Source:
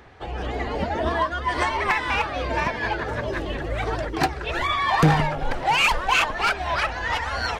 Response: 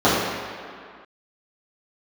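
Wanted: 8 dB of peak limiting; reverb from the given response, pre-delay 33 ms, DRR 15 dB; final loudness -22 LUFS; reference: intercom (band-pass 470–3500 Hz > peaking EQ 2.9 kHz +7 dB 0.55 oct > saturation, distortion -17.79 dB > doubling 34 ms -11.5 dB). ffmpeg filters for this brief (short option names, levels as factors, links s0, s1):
-filter_complex "[0:a]alimiter=limit=0.168:level=0:latency=1,asplit=2[s0][s1];[1:a]atrim=start_sample=2205,adelay=33[s2];[s1][s2]afir=irnorm=-1:irlink=0,volume=0.01[s3];[s0][s3]amix=inputs=2:normalize=0,highpass=470,lowpass=3500,equalizer=f=2900:t=o:w=0.55:g=7,asoftclip=threshold=0.133,asplit=2[s4][s5];[s5]adelay=34,volume=0.266[s6];[s4][s6]amix=inputs=2:normalize=0,volume=1.58"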